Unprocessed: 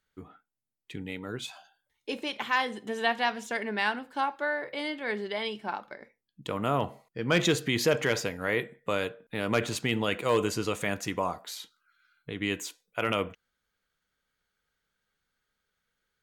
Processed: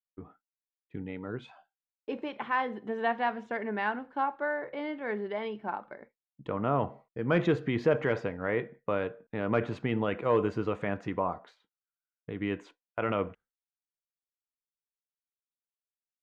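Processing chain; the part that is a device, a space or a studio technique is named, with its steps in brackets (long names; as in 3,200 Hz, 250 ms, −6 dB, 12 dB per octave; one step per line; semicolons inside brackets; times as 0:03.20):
hearing-loss simulation (low-pass filter 1,500 Hz 12 dB per octave; downward expander −47 dBFS)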